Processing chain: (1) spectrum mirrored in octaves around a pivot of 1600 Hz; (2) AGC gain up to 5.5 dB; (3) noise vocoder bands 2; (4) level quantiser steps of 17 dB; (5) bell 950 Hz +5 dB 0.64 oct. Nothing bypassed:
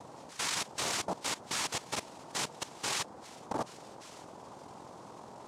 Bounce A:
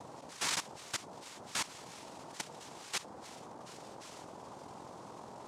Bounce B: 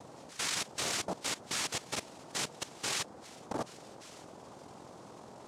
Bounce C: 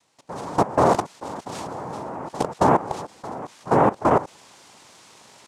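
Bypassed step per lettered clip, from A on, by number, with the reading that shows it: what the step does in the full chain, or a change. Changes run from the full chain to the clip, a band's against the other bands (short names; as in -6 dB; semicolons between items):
2, loudness change -6.5 LU; 5, 1 kHz band -3.5 dB; 1, 4 kHz band -25.0 dB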